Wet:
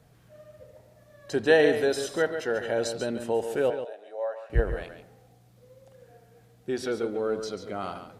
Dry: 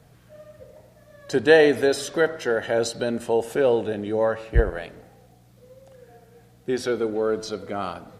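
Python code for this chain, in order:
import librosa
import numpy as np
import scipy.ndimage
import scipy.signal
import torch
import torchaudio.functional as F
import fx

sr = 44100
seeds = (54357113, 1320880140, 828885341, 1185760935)

y = fx.ladder_highpass(x, sr, hz=560.0, resonance_pct=65, at=(3.7, 4.5))
y = y + 10.0 ** (-9.5 / 20.0) * np.pad(y, (int(141 * sr / 1000.0), 0))[:len(y)]
y = y * 10.0 ** (-5.0 / 20.0)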